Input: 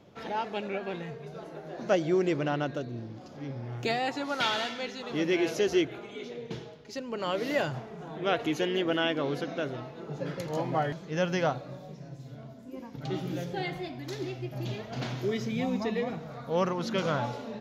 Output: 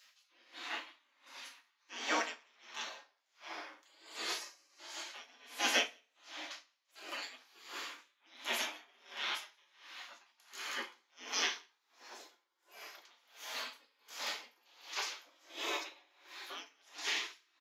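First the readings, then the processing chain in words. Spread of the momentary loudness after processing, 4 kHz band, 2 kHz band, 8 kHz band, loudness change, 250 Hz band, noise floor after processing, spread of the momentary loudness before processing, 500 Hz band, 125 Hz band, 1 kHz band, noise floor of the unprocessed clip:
20 LU, -1.5 dB, -4.0 dB, +4.0 dB, -8.0 dB, -22.5 dB, -78 dBFS, 14 LU, -20.0 dB, under -40 dB, -10.5 dB, -46 dBFS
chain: spectral gate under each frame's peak -25 dB weak; steep high-pass 240 Hz 48 dB/octave; delay 179 ms -11.5 dB; two-slope reverb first 0.53 s, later 3.9 s, from -27 dB, DRR 1.5 dB; logarithmic tremolo 1.4 Hz, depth 33 dB; trim +10 dB

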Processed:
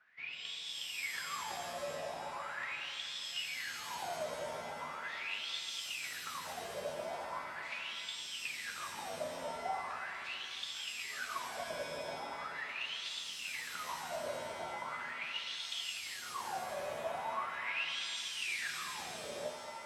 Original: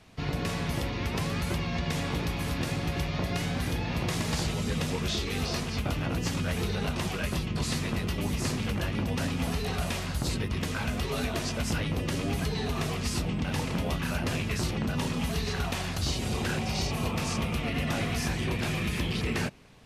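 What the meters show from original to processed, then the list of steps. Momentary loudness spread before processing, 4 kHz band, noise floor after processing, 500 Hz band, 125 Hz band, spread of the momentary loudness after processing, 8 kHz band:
1 LU, -4.5 dB, -46 dBFS, -8.0 dB, -32.5 dB, 5 LU, -8.0 dB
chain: wah-wah 0.4 Hz 580–3500 Hz, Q 17; pitch-shifted reverb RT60 2.2 s, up +7 st, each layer -2 dB, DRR 4.5 dB; trim +7.5 dB

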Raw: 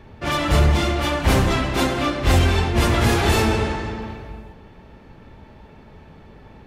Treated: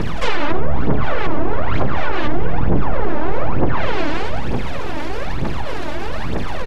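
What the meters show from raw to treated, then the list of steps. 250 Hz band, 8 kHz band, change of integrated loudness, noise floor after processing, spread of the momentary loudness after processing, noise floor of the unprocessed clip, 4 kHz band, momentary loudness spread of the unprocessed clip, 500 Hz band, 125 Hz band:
0.0 dB, under -10 dB, -3.5 dB, -17 dBFS, 6 LU, -46 dBFS, -5.5 dB, 12 LU, +0.5 dB, -3.0 dB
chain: on a send: frequency-shifting echo 95 ms, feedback 63%, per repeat -66 Hz, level -11 dB; on the sum: full-wave rectifier; phaser 1.1 Hz, delay 3.5 ms, feedback 66%; in parallel at -7 dB: saturation -14 dBFS, distortion -9 dB; on the sum: low-pass that closes with the level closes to 1.1 kHz, closed at -6.5 dBFS; level flattener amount 70%; trim -4 dB

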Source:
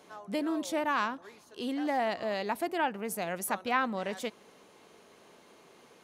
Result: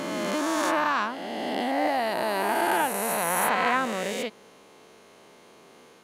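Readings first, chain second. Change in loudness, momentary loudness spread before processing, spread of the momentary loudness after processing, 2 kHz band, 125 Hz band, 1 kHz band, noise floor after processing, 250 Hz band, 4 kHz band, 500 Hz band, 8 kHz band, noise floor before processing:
+6.5 dB, 9 LU, 7 LU, +7.5 dB, +5.5 dB, +7.5 dB, -53 dBFS, +3.5 dB, +7.5 dB, +6.0 dB, +10.0 dB, -59 dBFS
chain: reverse spectral sustain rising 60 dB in 2.92 s; trim +1 dB

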